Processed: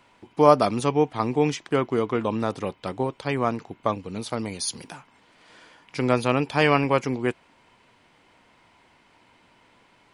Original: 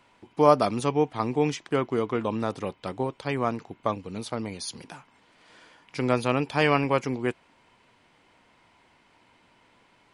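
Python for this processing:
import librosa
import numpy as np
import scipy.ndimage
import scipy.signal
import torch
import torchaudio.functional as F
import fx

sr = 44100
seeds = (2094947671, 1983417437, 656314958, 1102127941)

y = fx.high_shelf(x, sr, hz=fx.line((4.28, 5300.0), (4.91, 8400.0)), db=9.5, at=(4.28, 4.91), fade=0.02)
y = y * librosa.db_to_amplitude(2.5)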